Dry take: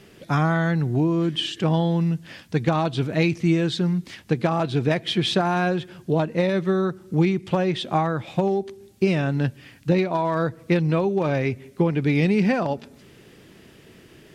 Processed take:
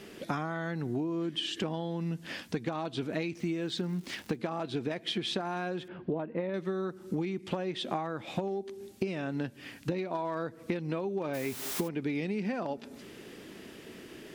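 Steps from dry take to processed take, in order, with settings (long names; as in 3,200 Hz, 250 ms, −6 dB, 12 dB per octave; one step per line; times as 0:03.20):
0:03.35–0:04.36: surface crackle 350 per second −40 dBFS
0:05.88–0:06.54: Gaussian smoothing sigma 3.2 samples
0:11.33–0:11.87: background noise white −36 dBFS
low shelf with overshoot 180 Hz −6.5 dB, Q 1.5
downward compressor 12 to 1, threshold −31 dBFS, peak gain reduction 17 dB
level +1.5 dB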